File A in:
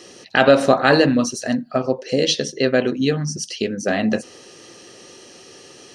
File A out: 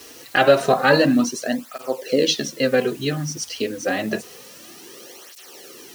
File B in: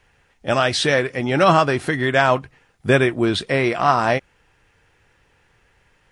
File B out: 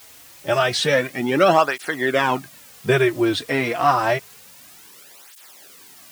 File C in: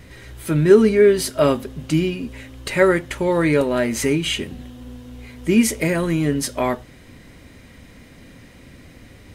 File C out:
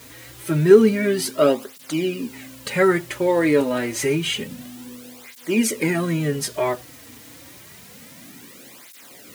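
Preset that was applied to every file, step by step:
HPF 150 Hz 12 dB/oct; in parallel at -4 dB: requantised 6-bit, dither triangular; on the sum: tape flanging out of phase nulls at 0.28 Hz, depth 5.7 ms; gain -2.5 dB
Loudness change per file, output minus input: -1.5, -1.5, -1.5 LU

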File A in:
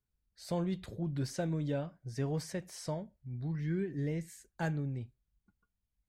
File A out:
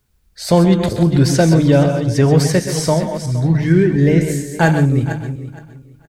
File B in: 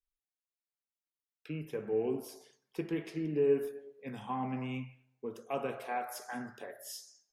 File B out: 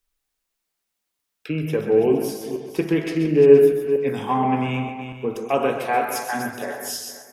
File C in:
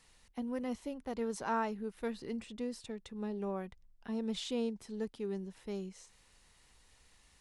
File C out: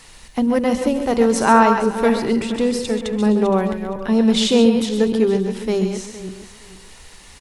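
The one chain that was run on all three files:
regenerating reverse delay 0.233 s, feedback 44%, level -9 dB; notches 50/100/150/200/250 Hz; tapped delay 0.128/0.142 s -11/-13 dB; normalise peaks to -1.5 dBFS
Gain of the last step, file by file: +22.5, +14.5, +20.5 dB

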